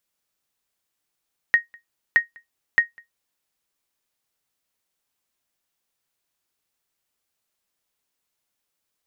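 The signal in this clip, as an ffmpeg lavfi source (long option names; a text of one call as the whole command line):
ffmpeg -f lavfi -i "aevalsrc='0.447*(sin(2*PI*1870*mod(t,0.62))*exp(-6.91*mod(t,0.62)/0.14)+0.0335*sin(2*PI*1870*max(mod(t,0.62)-0.2,0))*exp(-6.91*max(mod(t,0.62)-0.2,0)/0.14))':duration=1.86:sample_rate=44100" out.wav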